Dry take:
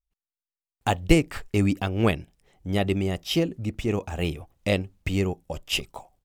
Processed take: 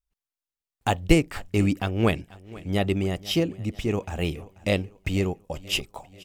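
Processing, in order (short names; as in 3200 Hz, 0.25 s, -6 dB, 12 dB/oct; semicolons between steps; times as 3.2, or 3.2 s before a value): feedback echo 0.487 s, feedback 48%, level -20.5 dB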